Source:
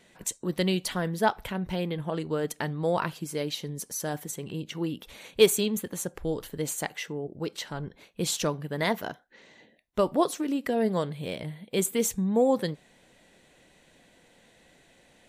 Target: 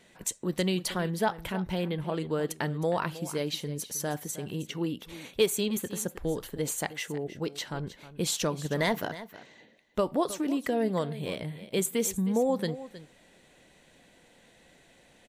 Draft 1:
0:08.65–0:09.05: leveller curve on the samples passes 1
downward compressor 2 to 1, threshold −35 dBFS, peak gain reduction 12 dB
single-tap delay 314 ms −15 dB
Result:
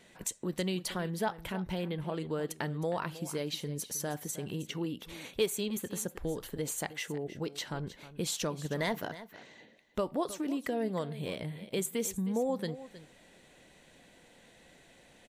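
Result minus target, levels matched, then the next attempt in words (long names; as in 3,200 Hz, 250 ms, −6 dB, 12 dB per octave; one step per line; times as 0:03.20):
downward compressor: peak gain reduction +5 dB
0:08.65–0:09.05: leveller curve on the samples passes 1
downward compressor 2 to 1, threshold −24.5 dBFS, peak gain reduction 7 dB
single-tap delay 314 ms −15 dB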